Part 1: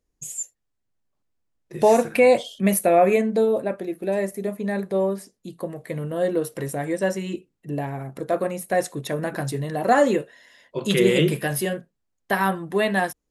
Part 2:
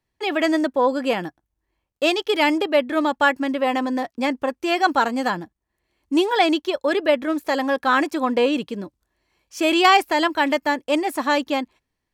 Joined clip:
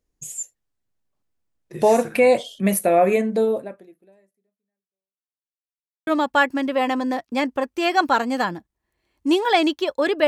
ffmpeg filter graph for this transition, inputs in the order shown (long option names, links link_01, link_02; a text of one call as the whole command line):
ffmpeg -i cue0.wav -i cue1.wav -filter_complex "[0:a]apad=whole_dur=10.27,atrim=end=10.27,asplit=2[link_01][link_02];[link_01]atrim=end=5.5,asetpts=PTS-STARTPTS,afade=type=out:start_time=3.51:duration=1.99:curve=exp[link_03];[link_02]atrim=start=5.5:end=6.07,asetpts=PTS-STARTPTS,volume=0[link_04];[1:a]atrim=start=2.93:end=7.13,asetpts=PTS-STARTPTS,afade=type=in:duration=0.004:curve=hsin[link_05];[link_03][link_04][link_05]concat=n=3:v=0:a=1" out.wav